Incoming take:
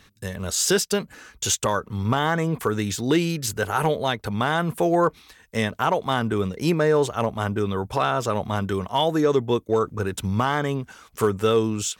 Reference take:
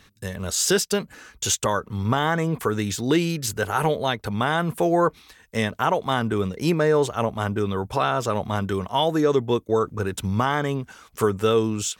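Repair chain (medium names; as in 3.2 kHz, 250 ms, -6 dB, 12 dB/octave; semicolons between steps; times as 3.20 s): clip repair -11 dBFS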